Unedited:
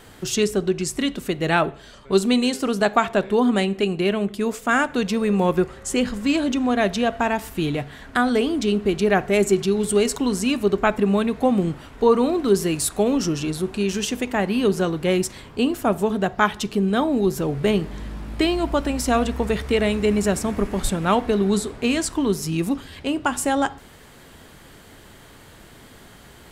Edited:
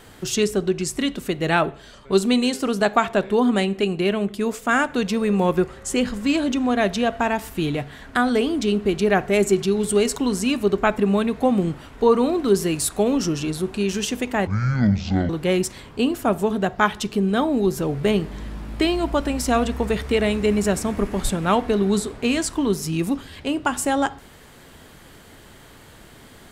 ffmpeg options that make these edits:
-filter_complex "[0:a]asplit=3[a][b][c];[a]atrim=end=14.474[d];[b]atrim=start=14.47:end=14.89,asetpts=PTS-STARTPTS,asetrate=22491,aresample=44100[e];[c]atrim=start=14.886[f];[d][e]acrossfade=d=0.004:c1=hsin:c2=hsin[g];[g][f]acrossfade=d=0.004:c1=hsin:c2=hsin"

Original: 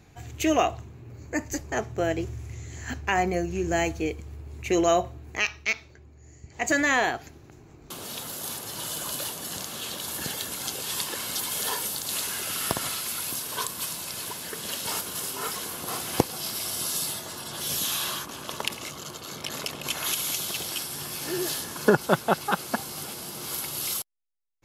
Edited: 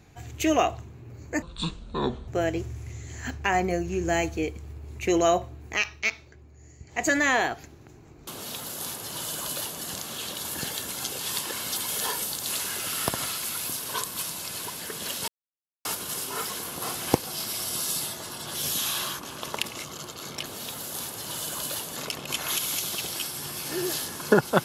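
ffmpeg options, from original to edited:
-filter_complex "[0:a]asplit=6[a][b][c][d][e][f];[a]atrim=end=1.424[g];[b]atrim=start=1.42:end=1.91,asetpts=PTS-STARTPTS,asetrate=25137,aresample=44100[h];[c]atrim=start=1.906:end=14.91,asetpts=PTS-STARTPTS,afade=t=out:st=13:d=0.004:c=hsin,apad=pad_dur=0.57[i];[d]atrim=start=14.91:end=19.522,asetpts=PTS-STARTPTS,afade=t=in:d=0.004:c=hsin[j];[e]atrim=start=7.948:end=9.452[k];[f]atrim=start=19.518[l];[g][h]acrossfade=d=0.004:c1=hsin:c2=hsin[m];[i][j]concat=n=2:v=0:a=1[n];[m][n]acrossfade=d=0.004:c1=hsin:c2=hsin[o];[o][k]acrossfade=d=0.004:c1=hsin:c2=hsin[p];[p][l]acrossfade=d=0.004:c1=hsin:c2=hsin"

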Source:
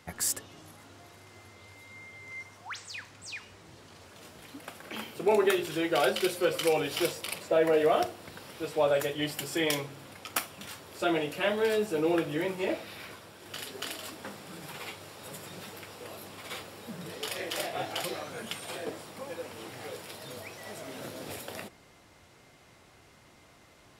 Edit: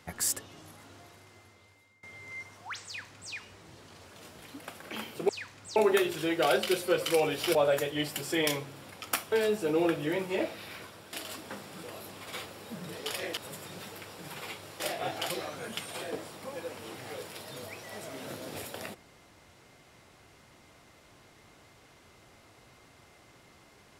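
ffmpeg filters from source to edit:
-filter_complex "[0:a]asplit=11[a][b][c][d][e][f][g][h][i][j][k];[a]atrim=end=2.03,asetpts=PTS-STARTPTS,afade=t=out:st=0.96:d=1.07:silence=0.0749894[l];[b]atrim=start=2.03:end=5.292,asetpts=PTS-STARTPTS,afade=t=in:d=0.004:c=hsin:silence=0.0749894[m];[c]atrim=start=2.858:end=3.332[n];[d]atrim=start=5.288:end=7.082[o];[e]atrim=start=8.778:end=10.552[p];[f]atrim=start=11.608:end=13.422[q];[g]atrim=start=13.868:end=14.572[r];[h]atrim=start=15.998:end=17.542[s];[i]atrim=start=15.178:end=16.002[t];[j]atrim=start=14.568:end=15.182[u];[k]atrim=start=17.538[v];[l][m]concat=n=2:v=0:a=1[w];[w][n]acrossfade=d=0.004:c1=hsin:c2=hsin[x];[x][o]acrossfade=d=0.004:c1=hsin:c2=hsin[y];[y][p]acrossfade=d=0.004:c1=hsin:c2=hsin[z];[z][q]acrossfade=d=0.004:c1=hsin:c2=hsin[aa];[aa][r]acrossfade=d=0.004:c1=hsin:c2=hsin[ab];[ab][s]acrossfade=d=0.004:c1=hsin:c2=hsin[ac];[ac][t]acrossfade=d=0.004:c1=hsin:c2=hsin[ad];[ad][u]acrossfade=d=0.004:c1=hsin:c2=hsin[ae];[ae][v]acrossfade=d=0.004:c1=hsin:c2=hsin"

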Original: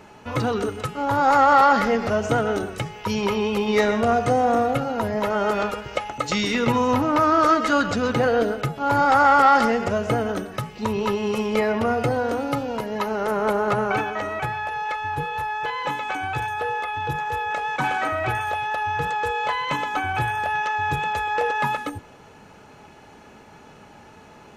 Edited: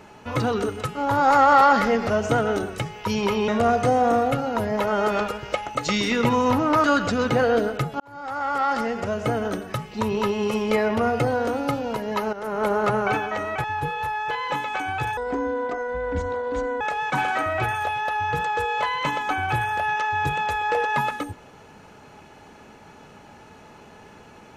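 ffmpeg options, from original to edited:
-filter_complex "[0:a]asplit=8[a][b][c][d][e][f][g][h];[a]atrim=end=3.482[i];[b]atrim=start=3.908:end=7.272[j];[c]atrim=start=7.678:end=8.84,asetpts=PTS-STARTPTS,afade=t=out:st=1.158:d=0.004:c=hsin[k];[d]atrim=start=8.84:end=13.17,asetpts=PTS-STARTPTS,afade=t=in:d=1.6,afade=t=out:st=4.326:d=0.004:c=hsin:silence=0.223872[l];[e]atrim=start=13.17:end=14.482,asetpts=PTS-STARTPTS,afade=t=in:d=0.39:silence=0.223872[m];[f]atrim=start=14.988:end=16.524[n];[g]atrim=start=16.52:end=17.47,asetpts=PTS-STARTPTS,asetrate=25578,aresample=44100[o];[h]atrim=start=17.466[p];[i][j]acrossfade=d=0.004:c1=hsin:c2=hsin[q];[k][l][m]concat=n=3:v=0:a=1[r];[q][r]acrossfade=d=0.004:c1=hsin:c2=hsin[s];[s][n]acrossfade=d=0.004:c1=hsin:c2=hsin[t];[t][o]acrossfade=d=0.004:c1=hsin:c2=hsin[u];[u][p]acrossfade=d=0.004:c1=hsin:c2=hsin"

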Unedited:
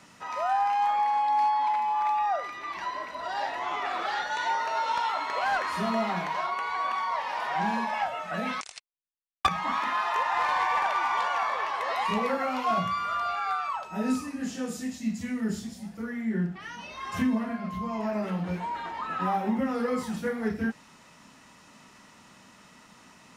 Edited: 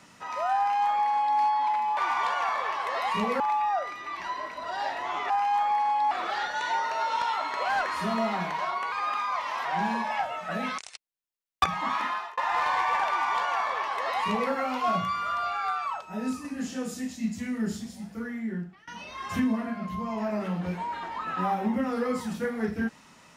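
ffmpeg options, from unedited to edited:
-filter_complex "[0:a]asplit=11[a][b][c][d][e][f][g][h][i][j][k];[a]atrim=end=1.972[l];[b]atrim=start=10.908:end=12.342[m];[c]atrim=start=1.968:end=3.872[n];[d]atrim=start=0.578:end=1.392[o];[e]atrim=start=3.868:end=6.684[p];[f]atrim=start=6.68:end=7.48,asetpts=PTS-STARTPTS,asetrate=48069,aresample=44100[q];[g]atrim=start=7.476:end=10.2,asetpts=PTS-STARTPTS,afade=t=out:st=2.394:d=0.33[r];[h]atrim=start=10.2:end=13.842,asetpts=PTS-STARTPTS,afade=t=in:d=0.004:c=hsin[s];[i]atrim=start=13.838:end=14.272,asetpts=PTS-STARTPTS,volume=-3.5dB[t];[j]atrim=start=14.268:end=16.7,asetpts=PTS-STARTPTS,afade=t=out:st=1.822:d=0.61:silence=0.0794328[u];[k]atrim=start=16.7,asetpts=PTS-STARTPTS,afade=t=in:d=0.004:c=hsin:silence=0.0794328[v];[l][m]acrossfade=d=0.004:c1=hsin:c2=hsin[w];[w][n]acrossfade=d=0.004:c1=hsin:c2=hsin[x];[x][o]acrossfade=d=0.004:c1=hsin:c2=hsin[y];[y][p]acrossfade=d=0.004:c1=hsin:c2=hsin[z];[z][q]acrossfade=d=0.004:c1=hsin:c2=hsin[aa];[r][s]concat=n=2:v=0:a=1[ab];[aa][ab]acrossfade=d=0.004:c1=hsin:c2=hsin[ac];[ac][t]acrossfade=d=0.004:c1=hsin:c2=hsin[ad];[u][v]concat=n=2:v=0:a=1[ae];[ad][ae]acrossfade=d=0.004:c1=hsin:c2=hsin"

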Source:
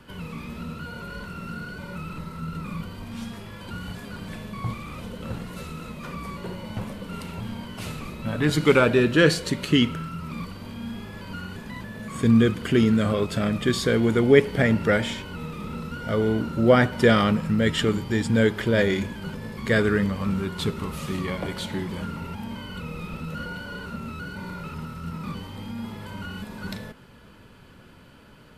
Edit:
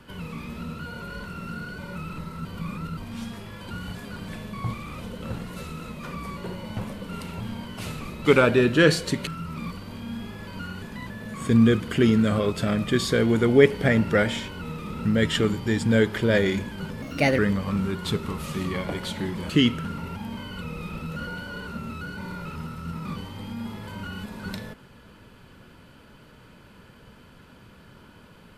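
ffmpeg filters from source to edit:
-filter_complex "[0:a]asplit=10[a][b][c][d][e][f][g][h][i][j];[a]atrim=end=2.452[k];[b]atrim=start=2.448:end=2.972,asetpts=PTS-STARTPTS,areverse[l];[c]atrim=start=2.968:end=8.252[m];[d]atrim=start=8.638:end=9.662[n];[e]atrim=start=10.008:end=15.792[o];[f]atrim=start=17.488:end=19.464[p];[g]atrim=start=19.46:end=19.92,asetpts=PTS-STARTPTS,asetrate=55566,aresample=44100[q];[h]atrim=start=19.916:end=22.032[r];[i]atrim=start=9.658:end=10.012[s];[j]atrim=start=22.028[t];[k][l]acrossfade=d=0.004:c1=hsin:c2=hsin[u];[u][m]acrossfade=d=0.004:c1=hsin:c2=hsin[v];[v][n]acrossfade=d=0.004:c1=hsin:c2=hsin[w];[w][o]acrossfade=d=0.004:c1=hsin:c2=hsin[x];[x][p]acrossfade=d=0.004:c1=hsin:c2=hsin[y];[y][q]acrossfade=d=0.004:c1=hsin:c2=hsin[z];[z][r]acrossfade=d=0.004:c1=hsin:c2=hsin[aa];[aa][s]acrossfade=d=0.004:c1=hsin:c2=hsin[ab];[ab][t]acrossfade=d=0.004:c1=hsin:c2=hsin"

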